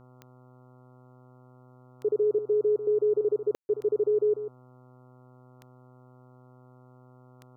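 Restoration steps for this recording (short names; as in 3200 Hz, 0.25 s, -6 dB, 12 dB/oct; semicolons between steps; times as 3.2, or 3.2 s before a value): de-click; de-hum 126.3 Hz, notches 11; room tone fill 3.55–3.69; inverse comb 0.144 s -10.5 dB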